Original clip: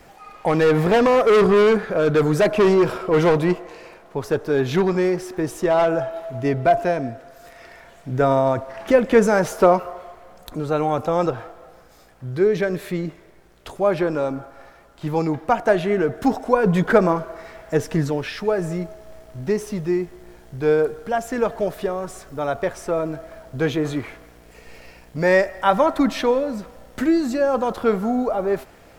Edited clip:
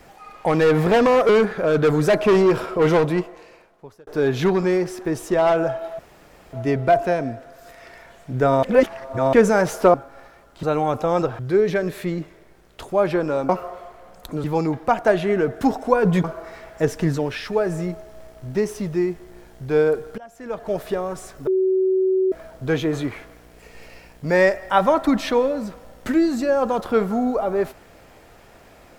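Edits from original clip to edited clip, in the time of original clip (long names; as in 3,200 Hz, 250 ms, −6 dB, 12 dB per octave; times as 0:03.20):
0:01.29–0:01.61: remove
0:03.20–0:04.39: fade out
0:06.31: splice in room tone 0.54 s
0:08.41–0:09.11: reverse
0:09.72–0:10.67: swap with 0:14.36–0:15.05
0:11.43–0:12.26: remove
0:16.85–0:17.16: remove
0:21.10–0:21.70: fade in quadratic, from −20 dB
0:22.39–0:23.24: beep over 377 Hz −15.5 dBFS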